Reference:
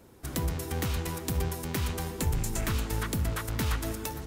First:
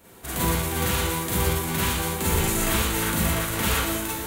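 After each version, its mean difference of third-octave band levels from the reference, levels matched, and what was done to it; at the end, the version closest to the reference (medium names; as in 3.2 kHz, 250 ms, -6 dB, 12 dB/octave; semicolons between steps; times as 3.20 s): 5.0 dB: formants flattened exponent 0.6; peaking EQ 5.2 kHz -8 dB 0.48 oct; Schroeder reverb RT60 0.48 s, combs from 33 ms, DRR -6 dB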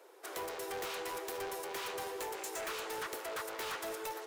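8.0 dB: steep high-pass 380 Hz 48 dB/octave; treble shelf 4.7 kHz -7 dB; hard clipper -38 dBFS, distortion -8 dB; trim +1.5 dB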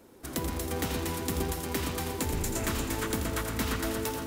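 3.0 dB: resonant low shelf 190 Hz -6 dB, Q 1.5; echo whose repeats swap between lows and highs 118 ms, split 1 kHz, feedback 80%, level -5 dB; bit-crushed delay 84 ms, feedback 35%, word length 9-bit, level -8.5 dB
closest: third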